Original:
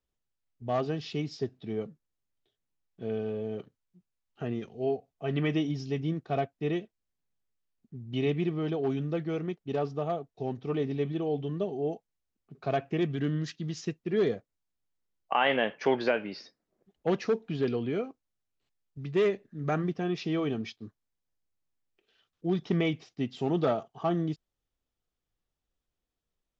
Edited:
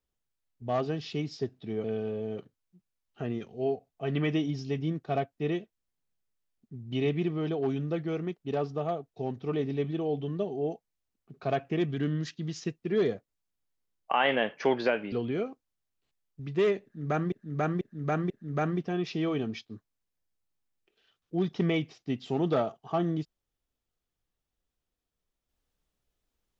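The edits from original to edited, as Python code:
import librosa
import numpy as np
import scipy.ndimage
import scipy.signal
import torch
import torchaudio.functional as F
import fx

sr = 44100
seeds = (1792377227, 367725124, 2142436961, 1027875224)

y = fx.edit(x, sr, fx.cut(start_s=1.84, length_s=1.21),
    fx.cut(start_s=16.33, length_s=1.37),
    fx.repeat(start_s=19.41, length_s=0.49, count=4), tone=tone)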